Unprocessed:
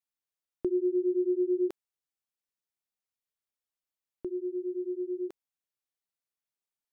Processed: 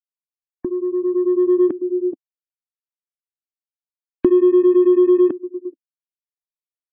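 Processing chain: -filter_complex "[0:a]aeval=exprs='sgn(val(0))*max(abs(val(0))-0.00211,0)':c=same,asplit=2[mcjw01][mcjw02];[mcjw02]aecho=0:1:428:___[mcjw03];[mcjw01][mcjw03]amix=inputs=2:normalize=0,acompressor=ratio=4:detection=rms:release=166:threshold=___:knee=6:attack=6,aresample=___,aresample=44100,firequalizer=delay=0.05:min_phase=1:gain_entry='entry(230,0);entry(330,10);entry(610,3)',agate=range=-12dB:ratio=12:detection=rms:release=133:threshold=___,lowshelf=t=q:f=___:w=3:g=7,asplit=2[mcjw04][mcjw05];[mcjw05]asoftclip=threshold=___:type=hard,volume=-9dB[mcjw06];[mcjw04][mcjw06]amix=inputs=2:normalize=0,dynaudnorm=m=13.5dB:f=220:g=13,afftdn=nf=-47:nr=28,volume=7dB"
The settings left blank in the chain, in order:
0.075, -42dB, 8000, -45dB, 330, -35.5dB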